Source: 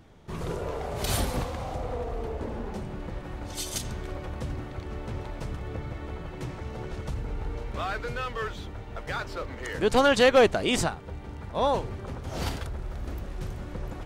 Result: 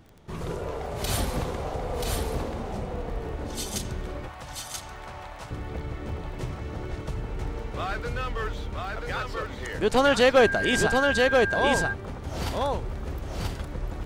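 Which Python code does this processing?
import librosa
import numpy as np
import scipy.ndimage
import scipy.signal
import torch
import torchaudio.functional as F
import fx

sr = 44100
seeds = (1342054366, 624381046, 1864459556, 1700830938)

y = x + 10.0 ** (-3.0 / 20.0) * np.pad(x, (int(983 * sr / 1000.0), 0))[:len(x)]
y = fx.dmg_tone(y, sr, hz=1600.0, level_db=-26.0, at=(10.36, 11.92), fade=0.02)
y = fx.dmg_crackle(y, sr, seeds[0], per_s=13.0, level_db=-39.0)
y = fx.low_shelf_res(y, sr, hz=560.0, db=-10.5, q=1.5, at=(4.28, 5.51))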